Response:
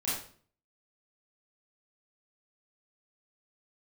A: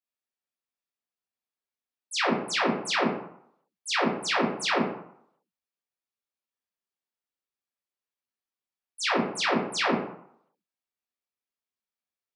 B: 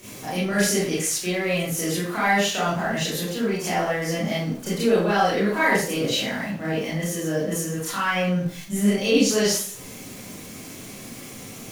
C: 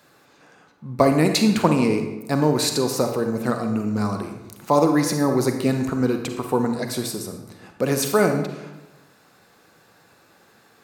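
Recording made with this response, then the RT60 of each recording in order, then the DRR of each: B; 0.70, 0.50, 1.0 s; -6.0, -10.0, 5.5 dB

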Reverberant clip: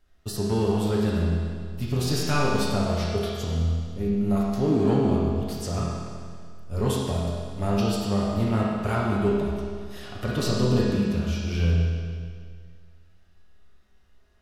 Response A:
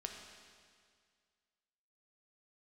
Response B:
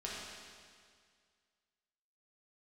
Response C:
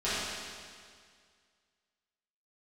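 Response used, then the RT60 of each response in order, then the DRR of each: B; 2.0, 2.0, 2.0 s; 2.0, -6.0, -13.5 dB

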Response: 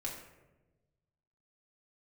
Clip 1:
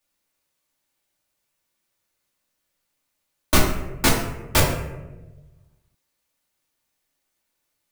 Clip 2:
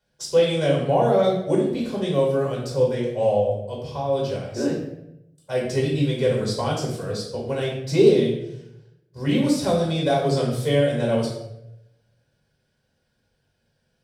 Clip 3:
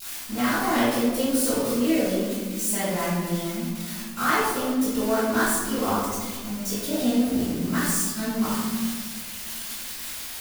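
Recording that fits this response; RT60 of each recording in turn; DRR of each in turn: 1; 1.1, 0.85, 1.5 s; -3.0, -4.0, -14.0 dB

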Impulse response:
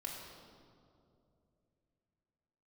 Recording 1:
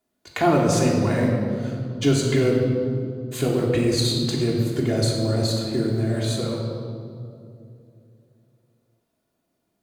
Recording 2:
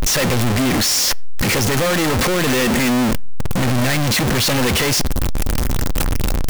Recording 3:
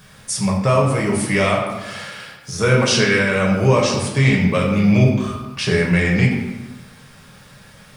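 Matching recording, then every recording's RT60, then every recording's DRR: 1; 2.7 s, not exponential, 1.1 s; -3.0, 18.0, -3.0 dB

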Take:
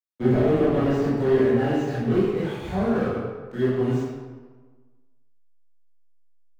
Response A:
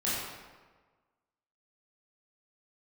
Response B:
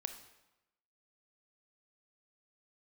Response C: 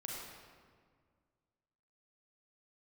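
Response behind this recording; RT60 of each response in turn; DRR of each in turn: A; 1.4, 0.95, 1.8 s; -9.5, 7.5, -3.5 dB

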